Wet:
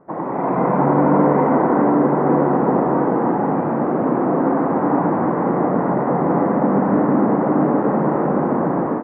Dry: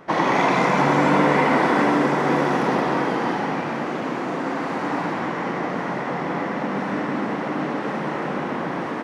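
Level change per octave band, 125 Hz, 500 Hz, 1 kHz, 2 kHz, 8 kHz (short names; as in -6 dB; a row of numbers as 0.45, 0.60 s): +6.0 dB, +6.0 dB, +2.5 dB, -7.5 dB, under -35 dB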